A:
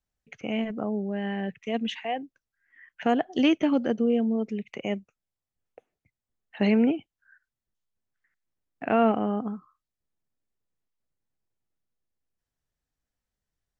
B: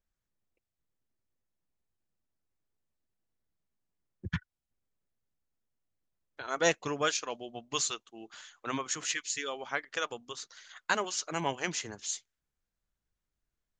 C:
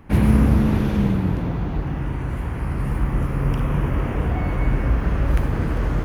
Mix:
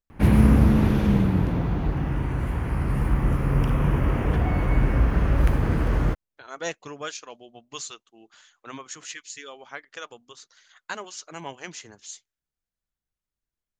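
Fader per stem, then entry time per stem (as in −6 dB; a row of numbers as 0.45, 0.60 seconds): muted, −4.5 dB, −0.5 dB; muted, 0.00 s, 0.10 s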